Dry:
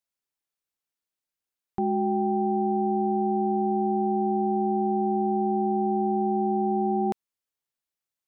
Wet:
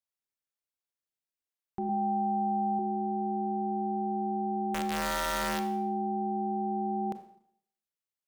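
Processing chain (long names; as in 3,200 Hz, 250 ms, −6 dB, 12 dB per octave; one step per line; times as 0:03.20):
0:01.89–0:02.79: comb filter 1.2 ms, depth 62%
0:04.74–0:05.63: wrap-around overflow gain 19 dB
four-comb reverb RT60 0.65 s, combs from 28 ms, DRR 8.5 dB
level −7 dB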